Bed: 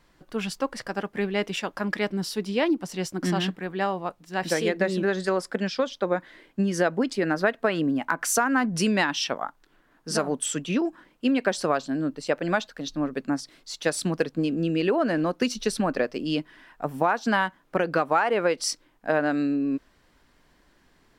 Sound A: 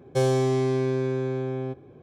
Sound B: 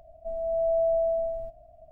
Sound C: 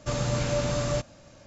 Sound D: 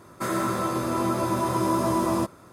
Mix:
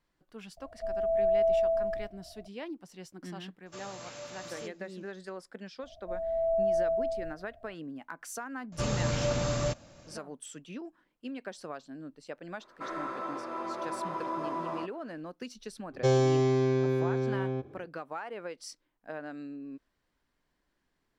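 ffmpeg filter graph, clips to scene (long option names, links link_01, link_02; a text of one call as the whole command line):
ffmpeg -i bed.wav -i cue0.wav -i cue1.wav -i cue2.wav -i cue3.wav -filter_complex "[2:a]asplit=2[link_01][link_02];[3:a]asplit=2[link_03][link_04];[0:a]volume=-17dB[link_05];[link_03]highpass=frequency=780:poles=1[link_06];[4:a]highpass=450,lowpass=2600[link_07];[1:a]aresample=16000,aresample=44100[link_08];[link_01]atrim=end=1.91,asetpts=PTS-STARTPTS,volume=-1dB,afade=type=in:duration=0.004:curve=hsin,afade=type=out:start_time=1.906:duration=0.004:curve=hsin,adelay=570[link_09];[link_06]atrim=end=1.46,asetpts=PTS-STARTPTS,volume=-12dB,afade=type=in:duration=0.004:curve=hsin,afade=type=out:start_time=1.456:duration=0.004:curve=hsin,adelay=3660[link_10];[link_02]atrim=end=1.91,asetpts=PTS-STARTPTS,volume=-3dB,afade=type=in:duration=0.004:curve=hsin,afade=type=out:start_time=1.906:duration=0.004:curve=hsin,adelay=5830[link_11];[link_04]atrim=end=1.46,asetpts=PTS-STARTPTS,volume=-2.5dB,afade=type=in:duration=0.004:curve=hsin,afade=type=out:start_time=1.456:duration=0.004:curve=hsin,adelay=8720[link_12];[link_07]atrim=end=2.52,asetpts=PTS-STARTPTS,volume=-8dB,afade=type=in:duration=0.004:curve=hsin,afade=type=out:start_time=2.516:duration=0.004:curve=hsin,adelay=12600[link_13];[link_08]atrim=end=2.02,asetpts=PTS-STARTPTS,volume=-2dB,afade=type=in:duration=0.1,afade=type=out:start_time=1.92:duration=0.1,adelay=700308S[link_14];[link_05][link_09][link_10][link_11][link_12][link_13][link_14]amix=inputs=7:normalize=0" out.wav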